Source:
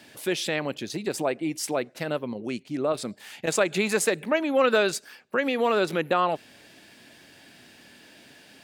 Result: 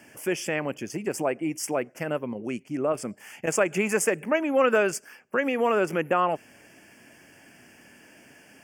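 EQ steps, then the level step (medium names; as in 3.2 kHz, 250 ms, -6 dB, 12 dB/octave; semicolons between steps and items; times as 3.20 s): Butterworth band-stop 3.9 kHz, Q 1.7; 0.0 dB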